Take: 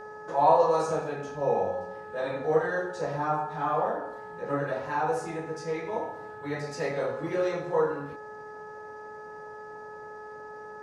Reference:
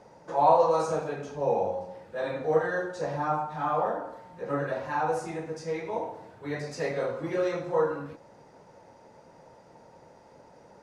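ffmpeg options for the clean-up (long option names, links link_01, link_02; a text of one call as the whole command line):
ffmpeg -i in.wav -af "bandreject=frequency=425.6:width_type=h:width=4,bandreject=frequency=851.2:width_type=h:width=4,bandreject=frequency=1276.8:width_type=h:width=4,bandreject=frequency=1702.4:width_type=h:width=4" out.wav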